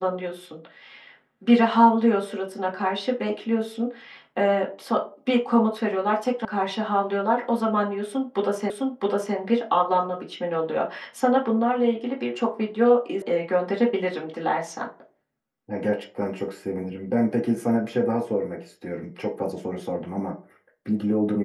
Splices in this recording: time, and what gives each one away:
6.45 s: sound stops dead
8.70 s: repeat of the last 0.66 s
13.22 s: sound stops dead

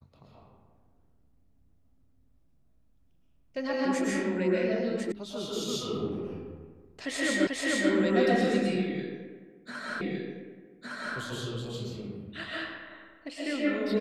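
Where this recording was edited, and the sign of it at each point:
5.12 s: sound stops dead
7.47 s: repeat of the last 0.44 s
10.01 s: repeat of the last 1.16 s

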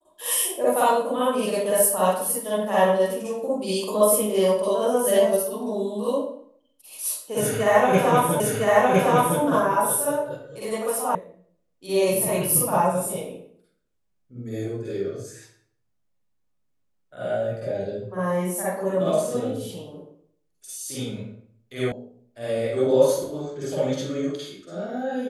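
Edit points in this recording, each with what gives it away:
8.40 s: repeat of the last 1.01 s
11.15 s: sound stops dead
21.92 s: sound stops dead

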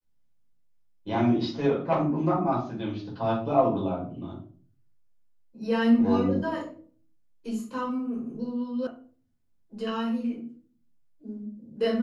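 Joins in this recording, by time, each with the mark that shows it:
8.87 s: sound stops dead

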